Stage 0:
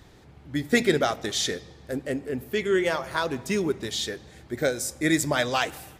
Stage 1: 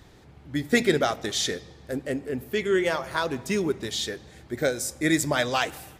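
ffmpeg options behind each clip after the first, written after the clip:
ffmpeg -i in.wav -af anull out.wav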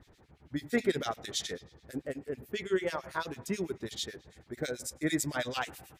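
ffmpeg -i in.wav -filter_complex "[0:a]acrossover=split=1900[link_01][link_02];[link_01]aeval=exprs='val(0)*(1-1/2+1/2*cos(2*PI*9.1*n/s))':channel_layout=same[link_03];[link_02]aeval=exprs='val(0)*(1-1/2-1/2*cos(2*PI*9.1*n/s))':channel_layout=same[link_04];[link_03][link_04]amix=inputs=2:normalize=0,volume=-4dB" out.wav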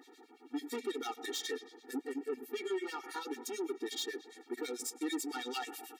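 ffmpeg -i in.wav -af "acompressor=threshold=-36dB:ratio=3,asoftclip=type=tanh:threshold=-38dB,afftfilt=real='re*eq(mod(floor(b*sr/1024/240),2),1)':imag='im*eq(mod(floor(b*sr/1024/240),2),1)':win_size=1024:overlap=0.75,volume=7.5dB" out.wav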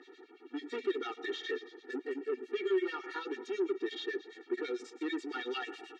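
ffmpeg -i in.wav -filter_complex "[0:a]asoftclip=type=tanh:threshold=-28.5dB,highpass=330,equalizer=frequency=370:width_type=q:width=4:gain=9,equalizer=frequency=830:width_type=q:width=4:gain=-7,equalizer=frequency=1600:width_type=q:width=4:gain=7,equalizer=frequency=2800:width_type=q:width=4:gain=3,equalizer=frequency=5000:width_type=q:width=4:gain=-5,lowpass=frequency=5300:width=0.5412,lowpass=frequency=5300:width=1.3066,acrossover=split=3800[link_01][link_02];[link_02]acompressor=threshold=-57dB:ratio=4:attack=1:release=60[link_03];[link_01][link_03]amix=inputs=2:normalize=0,volume=1.5dB" out.wav

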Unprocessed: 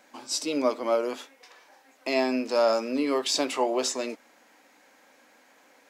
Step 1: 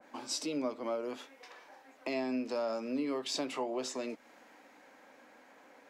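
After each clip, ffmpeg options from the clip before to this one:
ffmpeg -i in.wav -filter_complex "[0:a]highshelf=frequency=2900:gain=-12,acrossover=split=170[link_01][link_02];[link_02]acompressor=threshold=-42dB:ratio=2.5[link_03];[link_01][link_03]amix=inputs=2:normalize=0,adynamicequalizer=threshold=0.00178:dfrequency=2000:dqfactor=0.7:tfrequency=2000:tqfactor=0.7:attack=5:release=100:ratio=0.375:range=2.5:mode=boostabove:tftype=highshelf,volume=2dB" out.wav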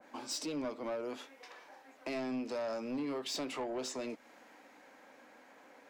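ffmpeg -i in.wav -af "asoftclip=type=tanh:threshold=-32dB" out.wav

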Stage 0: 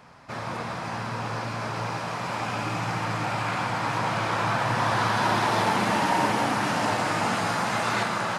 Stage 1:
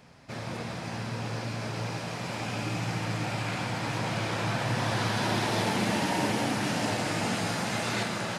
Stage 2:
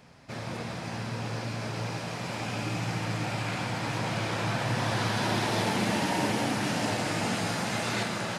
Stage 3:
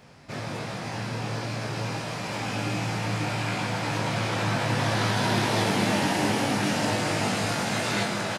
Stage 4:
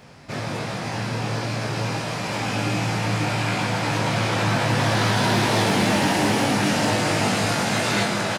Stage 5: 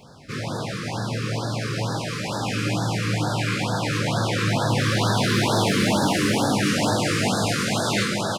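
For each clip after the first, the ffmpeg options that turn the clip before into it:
ffmpeg -i in.wav -af "equalizer=frequency=1100:width_type=o:width=1.3:gain=-10.5" out.wav
ffmpeg -i in.wav -af anull out.wav
ffmpeg -i in.wav -filter_complex "[0:a]asplit=2[link_01][link_02];[link_02]adelay=20,volume=-4dB[link_03];[link_01][link_03]amix=inputs=2:normalize=0,volume=2dB" out.wav
ffmpeg -i in.wav -af "asoftclip=type=hard:threshold=-19dB,volume=5dB" out.wav
ffmpeg -i in.wav -af "afftfilt=real='re*(1-between(b*sr/1024,710*pow(2500/710,0.5+0.5*sin(2*PI*2.2*pts/sr))/1.41,710*pow(2500/710,0.5+0.5*sin(2*PI*2.2*pts/sr))*1.41))':imag='im*(1-between(b*sr/1024,710*pow(2500/710,0.5+0.5*sin(2*PI*2.2*pts/sr))/1.41,710*pow(2500/710,0.5+0.5*sin(2*PI*2.2*pts/sr))*1.41))':win_size=1024:overlap=0.75" out.wav

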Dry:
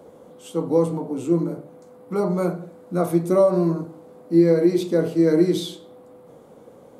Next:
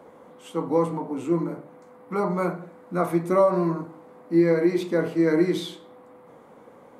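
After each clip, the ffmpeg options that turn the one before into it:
ffmpeg -i in.wav -af "equalizer=frequency=250:width_type=o:width=1:gain=4,equalizer=frequency=1000:width_type=o:width=1:gain=9,equalizer=frequency=2000:width_type=o:width=1:gain=11,volume=-6.5dB" out.wav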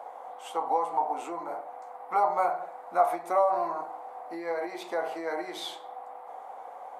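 ffmpeg -i in.wav -af "acompressor=threshold=-26dB:ratio=4,highpass=frequency=750:width_type=q:width=7.9" out.wav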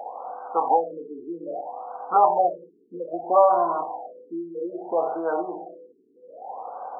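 ffmpeg -i in.wav -af "afftfilt=real='re*lt(b*sr/1024,440*pow(1600/440,0.5+0.5*sin(2*PI*0.62*pts/sr)))':imag='im*lt(b*sr/1024,440*pow(1600/440,0.5+0.5*sin(2*PI*0.62*pts/sr)))':win_size=1024:overlap=0.75,volume=7.5dB" out.wav

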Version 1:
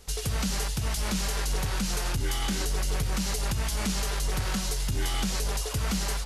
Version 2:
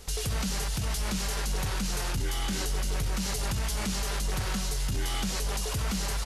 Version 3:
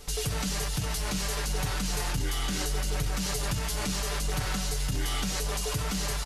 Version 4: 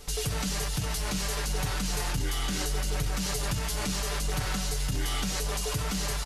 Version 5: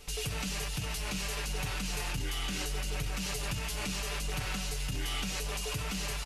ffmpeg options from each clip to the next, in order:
ffmpeg -i in.wav -af "aecho=1:1:346:0.211,alimiter=level_in=3.5dB:limit=-24dB:level=0:latency=1:release=16,volume=-3.5dB,volume=4.5dB" out.wav
ffmpeg -i in.wav -af "aecho=1:1:6.8:0.54" out.wav
ffmpeg -i in.wav -af anull out.wav
ffmpeg -i in.wav -af "equalizer=frequency=2600:width_type=o:width=0.47:gain=8.5,volume=-5.5dB" out.wav

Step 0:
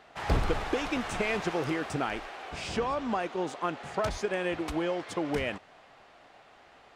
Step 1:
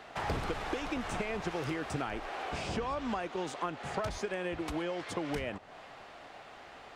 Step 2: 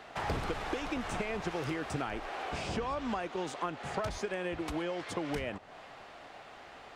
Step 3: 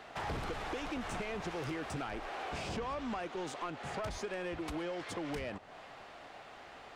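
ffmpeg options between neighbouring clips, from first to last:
ffmpeg -i in.wav -filter_complex "[0:a]acrossover=split=100|1300[link_01][link_02][link_03];[link_01]acompressor=threshold=-49dB:ratio=4[link_04];[link_02]acompressor=threshold=-41dB:ratio=4[link_05];[link_03]acompressor=threshold=-49dB:ratio=4[link_06];[link_04][link_05][link_06]amix=inputs=3:normalize=0,volume=5.5dB" out.wav
ffmpeg -i in.wav -af anull out.wav
ffmpeg -i in.wav -af "asoftclip=type=tanh:threshold=-31dB,volume=-1dB" out.wav

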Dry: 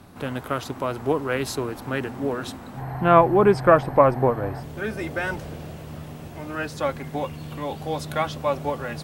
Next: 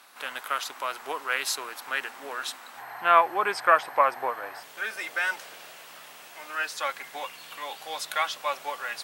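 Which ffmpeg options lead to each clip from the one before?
ffmpeg -i in.wav -af "highpass=1300,volume=4dB" out.wav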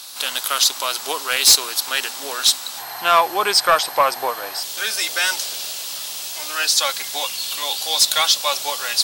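ffmpeg -i in.wav -af "highshelf=frequency=2900:width_type=q:width=1.5:gain=13.5,asoftclip=type=tanh:threshold=-13dB,volume=7.5dB" out.wav

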